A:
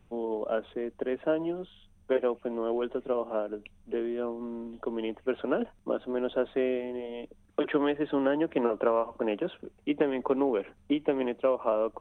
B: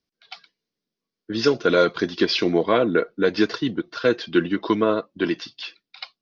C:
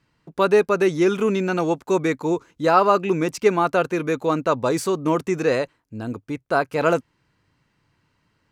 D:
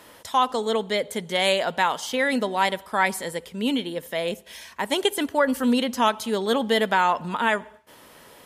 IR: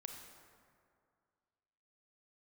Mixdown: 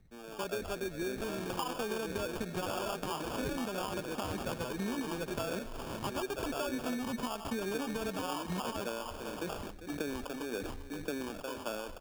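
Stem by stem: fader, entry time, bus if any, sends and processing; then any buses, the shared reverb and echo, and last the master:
-12.5 dB, 0.00 s, send -10 dB, echo send -12 dB, bell 650 Hz -4 dB 2.4 oct; phaser 1.8 Hz, delay 1.7 ms, feedback 65%; sustainer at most 52 dB/s
-15.5 dB, 0.00 s, no send, no echo send, compressor, threshold -27 dBFS, peak gain reduction 14 dB
-16.5 dB, 0.00 s, no send, no echo send, dry
-4.0 dB, 1.25 s, no send, no echo send, comb 4.8 ms, depth 44%; limiter -17.5 dBFS, peak gain reduction 11 dB; three-band squash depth 40%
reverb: on, RT60 2.2 s, pre-delay 28 ms
echo: echo 0.396 s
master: sample-and-hold 22×; compressor, threshold -33 dBFS, peak gain reduction 10 dB

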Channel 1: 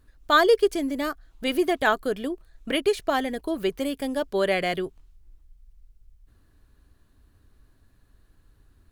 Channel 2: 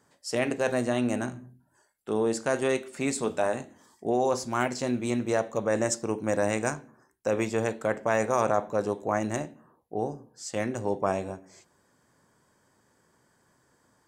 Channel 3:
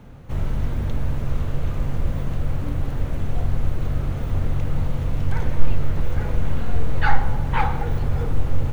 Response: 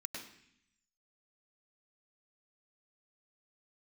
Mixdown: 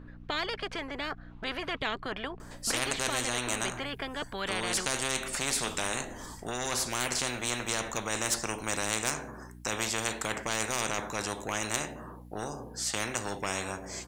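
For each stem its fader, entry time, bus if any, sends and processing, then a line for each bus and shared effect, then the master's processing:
-3.0 dB, 0.00 s, no send, LPF 2000 Hz 12 dB/oct
0.0 dB, 2.40 s, no send, soft clip -13.5 dBFS, distortion -21 dB
off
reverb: off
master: hum 60 Hz, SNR 31 dB; spectral compressor 4:1

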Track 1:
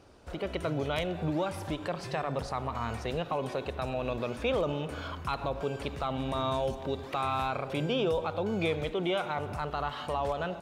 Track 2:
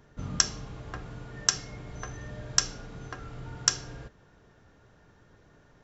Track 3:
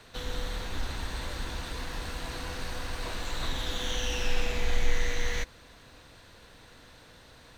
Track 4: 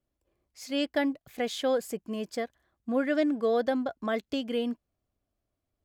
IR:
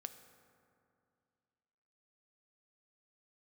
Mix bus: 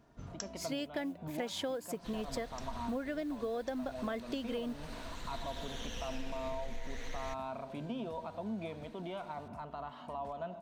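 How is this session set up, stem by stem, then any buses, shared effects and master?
-16.5 dB, 0.00 s, no send, small resonant body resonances 230/670/940 Hz, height 16 dB, ringing for 50 ms
-10.5 dB, 0.00 s, no send, auto duck -18 dB, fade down 0.30 s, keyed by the fourth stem
-11.5 dB, 1.90 s, no send, vibrato 14 Hz 72 cents
+0.5 dB, 0.00 s, no send, modulation noise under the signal 32 dB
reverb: off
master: compressor 12:1, threshold -34 dBFS, peak gain reduction 14 dB

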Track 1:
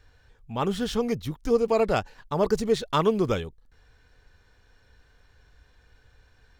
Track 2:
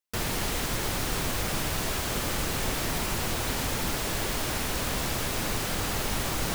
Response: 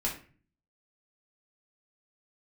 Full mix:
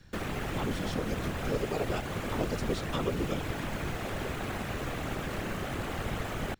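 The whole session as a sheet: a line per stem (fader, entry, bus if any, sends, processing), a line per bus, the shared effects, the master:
-6.0 dB, 0.00 s, no send, bell 940 Hz -7 dB 2.2 oct; whisperiser
-4.5 dB, 0.00 s, no send, median filter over 9 samples; notch 950 Hz, Q 7.4; whisperiser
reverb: off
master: three-band squash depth 40%

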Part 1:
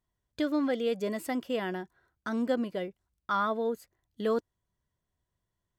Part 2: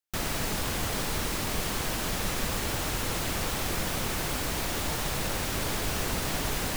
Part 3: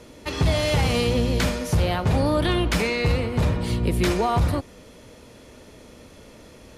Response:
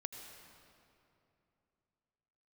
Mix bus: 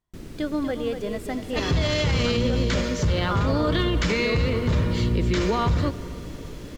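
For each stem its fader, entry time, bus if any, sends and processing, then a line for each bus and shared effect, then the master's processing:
-1.0 dB, 0.00 s, send -7 dB, echo send -6 dB, dry
-17.5 dB, 0.00 s, no send, no echo send, resonant low shelf 520 Hz +12 dB, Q 1.5
+1.5 dB, 1.30 s, send -7.5 dB, no echo send, elliptic low-pass 7300 Hz; bell 760 Hz -12 dB 0.34 oct; notch 2500 Hz, Q 16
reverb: on, RT60 2.8 s, pre-delay 75 ms
echo: echo 0.241 s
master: high shelf 12000 Hz -9 dB; limiter -14.5 dBFS, peak gain reduction 8 dB

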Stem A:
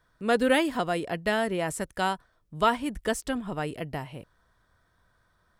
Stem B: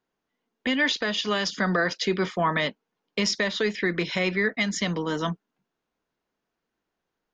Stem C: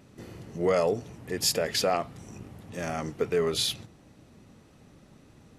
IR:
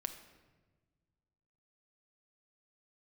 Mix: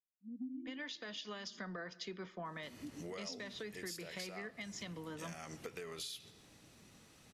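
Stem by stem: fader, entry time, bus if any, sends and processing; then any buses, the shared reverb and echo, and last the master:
-0.5 dB, 0.00 s, no send, echo send -6.5 dB, vocal tract filter i; spectral expander 2.5:1
-12.0 dB, 0.00 s, send -10 dB, no echo send, three-band expander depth 70%
-7.0 dB, 2.45 s, send -3.5 dB, no echo send, tilt shelf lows -7 dB, about 1400 Hz; compressor 2:1, threshold -36 dBFS, peak gain reduction 11.5 dB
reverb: on, RT60 1.3 s, pre-delay 6 ms
echo: echo 0.129 s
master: compressor 6:1, threshold -43 dBFS, peak gain reduction 16.5 dB

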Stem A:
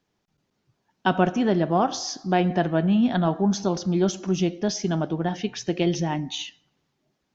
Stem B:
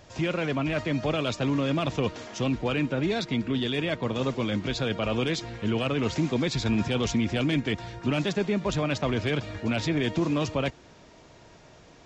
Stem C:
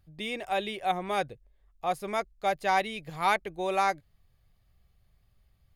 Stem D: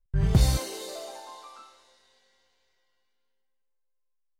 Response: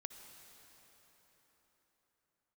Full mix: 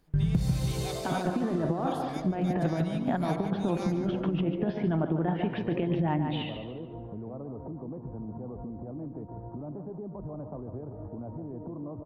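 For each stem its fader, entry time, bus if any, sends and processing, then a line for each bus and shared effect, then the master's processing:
+1.5 dB, 0.00 s, no bus, no send, echo send -8.5 dB, Bessel low-pass 1700 Hz, order 8; negative-ratio compressor -25 dBFS, ratio -0.5
+1.0 dB, 1.50 s, bus A, no send, echo send -16 dB, steep low-pass 970 Hz; limiter -25.5 dBFS, peak gain reduction 10 dB
-11.0 dB, 0.00 s, bus A, no send, echo send -17.5 dB, bell 5100 Hz +12.5 dB 2.4 oct
-2.0 dB, 0.00 s, no bus, no send, echo send -4 dB, bell 170 Hz +14.5 dB 1.1 oct
bus A: 0.0 dB, high shelf 7100 Hz +9.5 dB; compressor 3:1, threshold -39 dBFS, peak gain reduction 11 dB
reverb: off
echo: feedback echo 0.145 s, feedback 34%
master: compressor 5:1, threshold -24 dBFS, peak gain reduction 15.5 dB

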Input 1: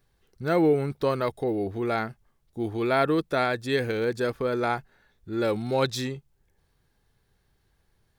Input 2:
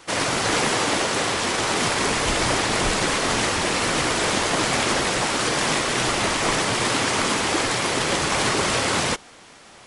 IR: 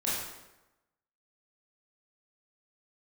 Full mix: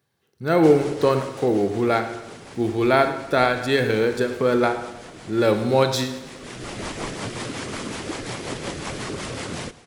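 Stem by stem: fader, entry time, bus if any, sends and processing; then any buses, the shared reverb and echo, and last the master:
-2.5 dB, 0.00 s, send -13.5 dB, echo send -15 dB, HPF 100 Hz 24 dB/oct; ending taper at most 240 dB/s
-13.0 dB, 0.55 s, no send, echo send -19.5 dB, low shelf 470 Hz +7.5 dB; compressor 2.5:1, threshold -22 dBFS, peak gain reduction 6.5 dB; rotary speaker horn 5.5 Hz; auto duck -12 dB, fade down 1.95 s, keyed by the first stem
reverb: on, RT60 1.0 s, pre-delay 18 ms
echo: feedback echo 0.106 s, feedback 52%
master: AGC gain up to 8 dB

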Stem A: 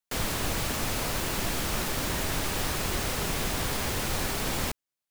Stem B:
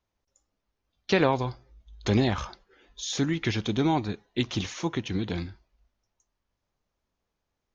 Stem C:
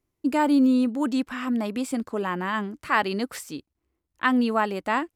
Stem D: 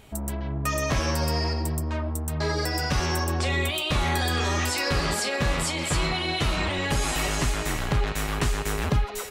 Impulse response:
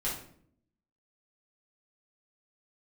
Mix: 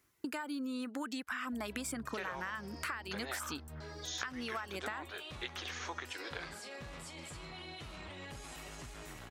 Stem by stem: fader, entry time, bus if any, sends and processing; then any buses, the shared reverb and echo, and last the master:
off
-6.5 dB, 1.05 s, bus B, no send, inverse Chebyshev high-pass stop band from 170 Hz, stop band 50 dB
+1.0 dB, 0.00 s, bus B, no send, high shelf 2300 Hz +11.5 dB; compressor 2.5:1, threshold -30 dBFS, peak gain reduction 11.5 dB; reverb removal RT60 0.56 s
-14.0 dB, 1.40 s, bus A, no send, dry
bus A: 0.0 dB, limiter -39 dBFS, peak gain reduction 10.5 dB
bus B: 0.0 dB, bell 1500 Hz +11 dB 1.1 oct; compressor, threshold -28 dBFS, peak gain reduction 14 dB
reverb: off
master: HPF 50 Hz; compressor 3:1, threshold -39 dBFS, peak gain reduction 11 dB

